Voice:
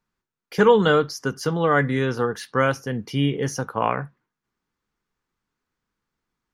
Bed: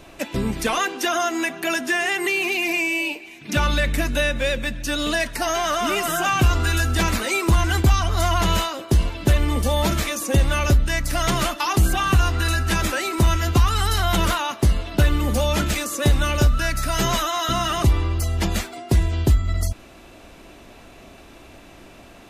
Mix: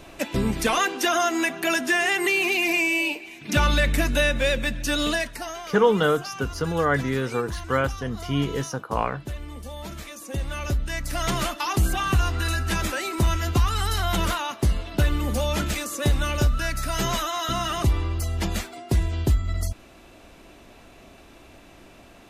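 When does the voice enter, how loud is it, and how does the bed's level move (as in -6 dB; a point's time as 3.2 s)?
5.15 s, -3.0 dB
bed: 5.05 s 0 dB
5.71 s -16.5 dB
9.79 s -16.5 dB
11.29 s -4 dB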